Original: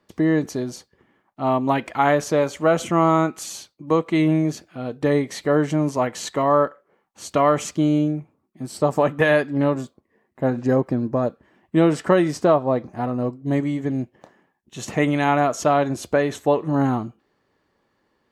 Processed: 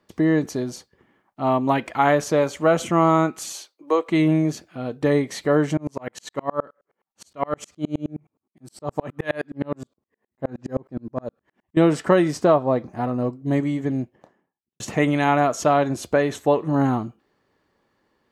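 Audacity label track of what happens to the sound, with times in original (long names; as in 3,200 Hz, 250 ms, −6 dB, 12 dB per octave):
3.520000	4.090000	high-pass filter 340 Hz 24 dB per octave
5.770000	11.770000	tremolo with a ramp in dB swelling 9.6 Hz, depth 37 dB
13.860000	14.800000	fade out and dull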